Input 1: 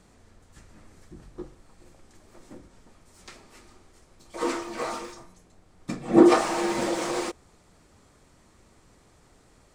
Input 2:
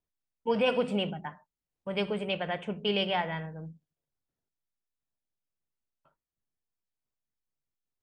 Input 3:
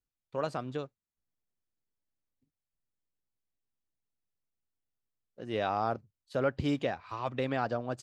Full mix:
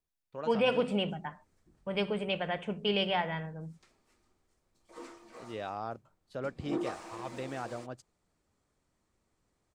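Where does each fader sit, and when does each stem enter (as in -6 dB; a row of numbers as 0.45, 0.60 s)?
-19.5, -1.0, -7.5 dB; 0.55, 0.00, 0.00 s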